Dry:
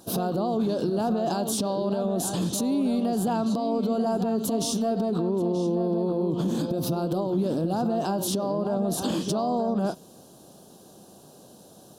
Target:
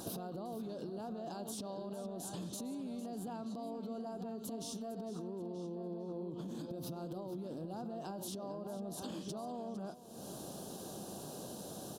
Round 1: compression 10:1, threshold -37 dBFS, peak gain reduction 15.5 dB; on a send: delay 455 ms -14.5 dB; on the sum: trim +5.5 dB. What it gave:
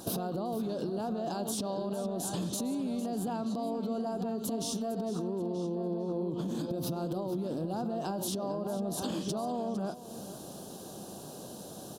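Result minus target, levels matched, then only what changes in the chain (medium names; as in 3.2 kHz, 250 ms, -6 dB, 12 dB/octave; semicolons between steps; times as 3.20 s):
compression: peak gain reduction -9 dB
change: compression 10:1, threshold -47 dBFS, peak gain reduction 24.5 dB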